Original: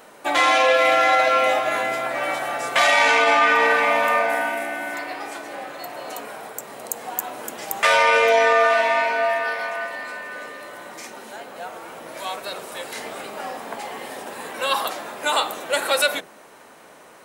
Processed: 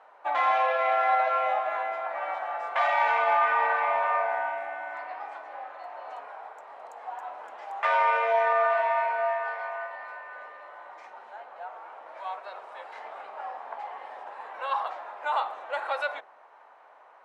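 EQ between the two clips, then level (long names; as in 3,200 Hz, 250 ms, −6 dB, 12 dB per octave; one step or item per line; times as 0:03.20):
four-pole ladder band-pass 1,000 Hz, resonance 40%
+4.0 dB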